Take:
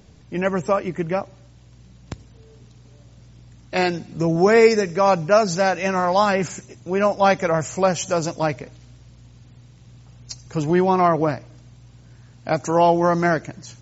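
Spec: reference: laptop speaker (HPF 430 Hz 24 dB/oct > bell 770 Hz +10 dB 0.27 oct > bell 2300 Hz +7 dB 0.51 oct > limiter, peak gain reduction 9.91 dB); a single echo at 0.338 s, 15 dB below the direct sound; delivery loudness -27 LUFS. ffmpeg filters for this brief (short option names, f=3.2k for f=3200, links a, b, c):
-af "highpass=f=430:w=0.5412,highpass=f=430:w=1.3066,equalizer=f=770:t=o:w=0.27:g=10,equalizer=f=2.3k:t=o:w=0.51:g=7,aecho=1:1:338:0.178,volume=-5dB,alimiter=limit=-15.5dB:level=0:latency=1"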